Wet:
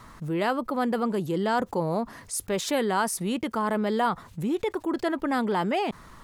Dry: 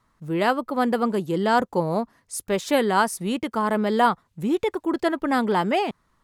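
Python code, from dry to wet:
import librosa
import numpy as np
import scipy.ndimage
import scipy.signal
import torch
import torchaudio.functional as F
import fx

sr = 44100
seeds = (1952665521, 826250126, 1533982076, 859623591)

y = fx.env_flatten(x, sr, amount_pct=50)
y = y * librosa.db_to_amplitude(-7.0)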